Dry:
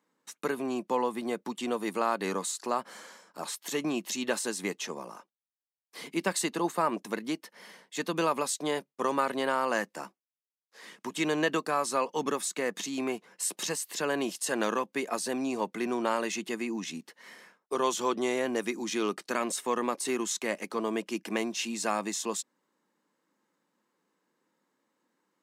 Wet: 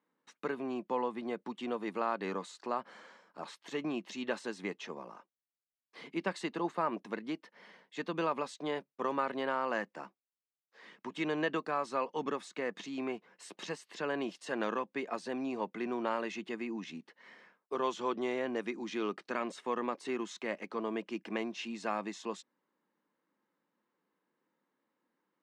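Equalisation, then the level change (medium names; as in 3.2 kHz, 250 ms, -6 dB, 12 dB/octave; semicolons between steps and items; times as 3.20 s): low-pass 3.3 kHz 12 dB/octave; -5.0 dB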